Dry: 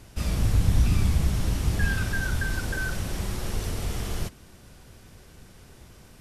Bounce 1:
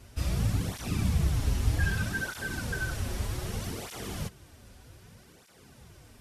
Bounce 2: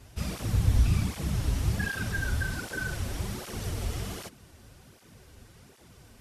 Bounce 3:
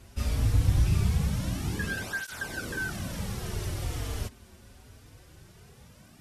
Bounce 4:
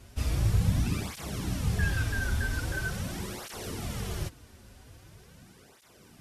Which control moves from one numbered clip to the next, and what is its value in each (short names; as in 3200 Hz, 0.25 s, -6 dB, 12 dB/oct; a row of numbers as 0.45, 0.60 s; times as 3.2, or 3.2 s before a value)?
tape flanging out of phase, nulls at: 0.64, 1.3, 0.22, 0.43 Hz